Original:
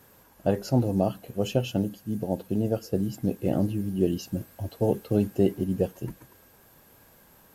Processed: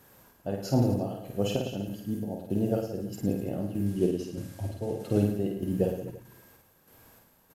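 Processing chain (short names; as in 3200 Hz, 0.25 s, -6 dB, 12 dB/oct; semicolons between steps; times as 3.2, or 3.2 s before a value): 3.86–5.21 CVSD 64 kbps; chopper 1.6 Hz, depth 60%, duty 50%; reverse bouncing-ball echo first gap 50 ms, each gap 1.15×, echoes 5; gain -2 dB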